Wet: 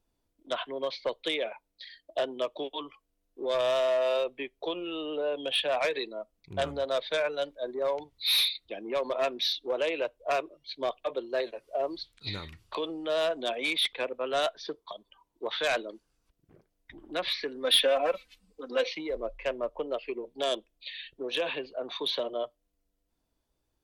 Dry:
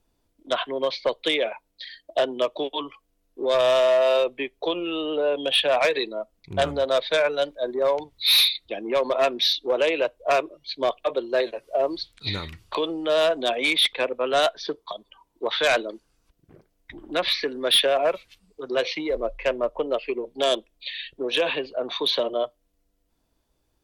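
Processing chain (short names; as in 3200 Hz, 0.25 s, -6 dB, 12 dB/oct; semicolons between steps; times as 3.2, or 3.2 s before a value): 17.64–18.89 comb 3.9 ms, depth 99%; wow and flutter 22 cents; gain -7.5 dB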